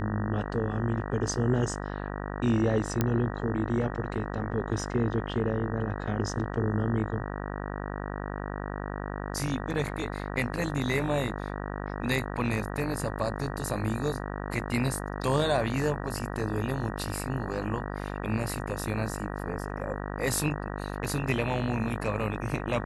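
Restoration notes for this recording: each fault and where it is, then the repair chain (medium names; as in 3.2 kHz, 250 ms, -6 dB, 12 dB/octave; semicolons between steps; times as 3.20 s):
buzz 50 Hz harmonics 38 -35 dBFS
3.01 s: pop -11 dBFS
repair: de-click; de-hum 50 Hz, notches 38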